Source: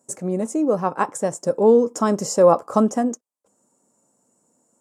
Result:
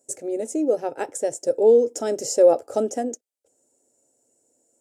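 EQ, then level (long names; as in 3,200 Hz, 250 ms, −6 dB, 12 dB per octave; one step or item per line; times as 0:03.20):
phaser with its sweep stopped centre 450 Hz, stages 4
0.0 dB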